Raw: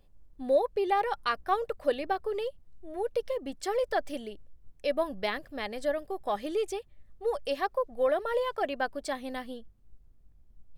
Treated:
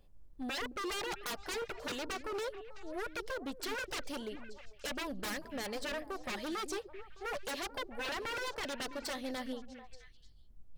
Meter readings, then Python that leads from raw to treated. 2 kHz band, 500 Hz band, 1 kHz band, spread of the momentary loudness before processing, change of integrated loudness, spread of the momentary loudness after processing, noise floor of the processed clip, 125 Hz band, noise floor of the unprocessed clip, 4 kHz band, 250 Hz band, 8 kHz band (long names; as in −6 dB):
−2.0 dB, −12.0 dB, −10.5 dB, 11 LU, −8.0 dB, 8 LU, −56 dBFS, can't be measured, −58 dBFS, +1.0 dB, −3.5 dB, +5.5 dB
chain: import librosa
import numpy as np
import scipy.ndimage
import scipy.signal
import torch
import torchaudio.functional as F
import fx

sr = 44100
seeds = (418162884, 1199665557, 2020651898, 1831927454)

y = fx.dynamic_eq(x, sr, hz=4400.0, q=1.6, threshold_db=-55.0, ratio=4.0, max_db=7)
y = 10.0 ** (-31.5 / 20.0) * (np.abs((y / 10.0 ** (-31.5 / 20.0) + 3.0) % 4.0 - 2.0) - 1.0)
y = fx.echo_stepped(y, sr, ms=220, hz=300.0, octaves=1.4, feedback_pct=70, wet_db=-7.5)
y = y * 10.0 ** (-1.5 / 20.0)